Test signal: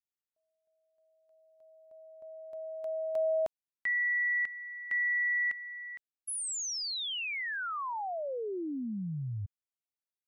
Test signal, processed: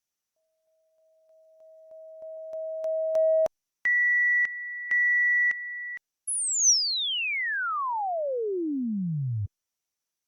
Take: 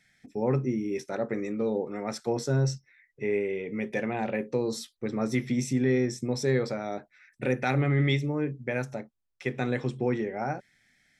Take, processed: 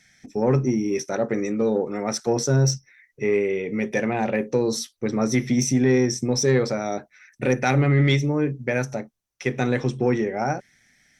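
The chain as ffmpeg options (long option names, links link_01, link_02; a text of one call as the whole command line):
ffmpeg -i in.wav -af "equalizer=frequency=5900:width_type=o:width=0.25:gain=12,asoftclip=type=tanh:threshold=-15dB,volume=7dB" -ar 48000 -c:a libopus -b:a 48k out.opus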